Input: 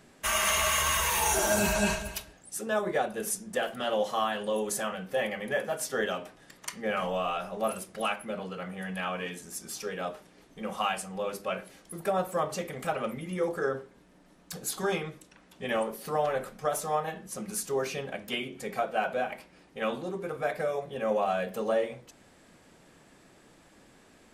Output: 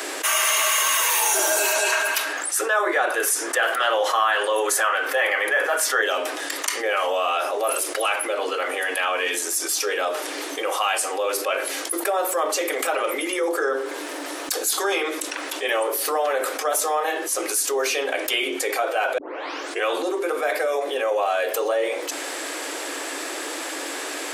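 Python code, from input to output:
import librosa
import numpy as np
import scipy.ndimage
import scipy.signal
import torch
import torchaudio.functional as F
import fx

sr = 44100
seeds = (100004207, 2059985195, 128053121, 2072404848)

y = fx.peak_eq(x, sr, hz=1400.0, db=11.5, octaves=1.6, at=(1.92, 6.02))
y = fx.edit(y, sr, fx.tape_start(start_s=19.18, length_s=0.67), tone=tone)
y = scipy.signal.sosfilt(scipy.signal.cheby1(8, 1.0, 280.0, 'highpass', fs=sr, output='sos'), y)
y = fx.tilt_eq(y, sr, slope=1.5)
y = fx.env_flatten(y, sr, amount_pct=70)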